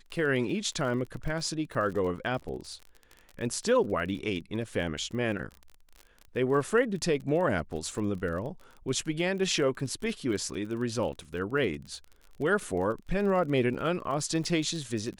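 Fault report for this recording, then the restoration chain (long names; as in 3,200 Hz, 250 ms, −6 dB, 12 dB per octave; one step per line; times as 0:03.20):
surface crackle 34 per second −37 dBFS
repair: click removal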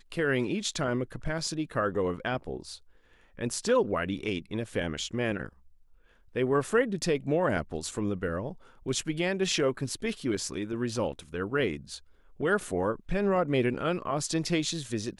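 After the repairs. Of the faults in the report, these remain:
none of them is left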